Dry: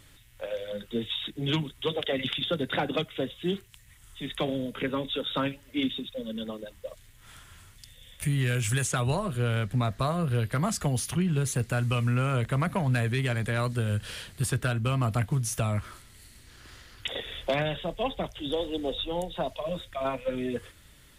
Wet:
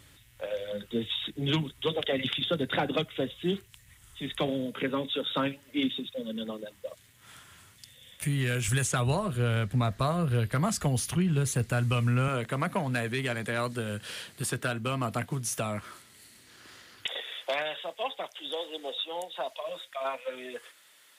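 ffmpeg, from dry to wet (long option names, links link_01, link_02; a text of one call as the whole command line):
ffmpeg -i in.wav -af "asetnsamples=nb_out_samples=441:pad=0,asendcmd='4.48 highpass f 130;8.68 highpass f 44;12.28 highpass f 190;17.06 highpass f 650',highpass=51" out.wav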